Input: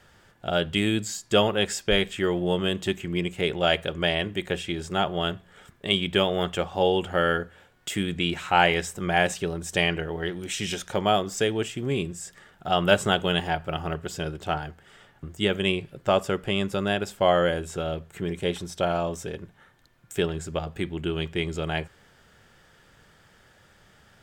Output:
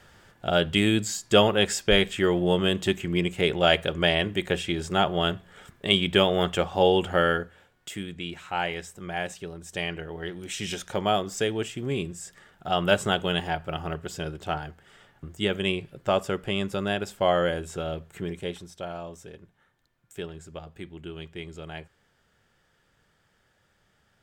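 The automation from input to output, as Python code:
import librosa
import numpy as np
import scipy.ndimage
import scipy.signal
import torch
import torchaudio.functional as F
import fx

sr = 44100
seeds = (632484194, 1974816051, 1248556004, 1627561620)

y = fx.gain(x, sr, db=fx.line((7.12, 2.0), (8.13, -9.0), (9.56, -9.0), (10.73, -2.0), (18.21, -2.0), (18.78, -10.5)))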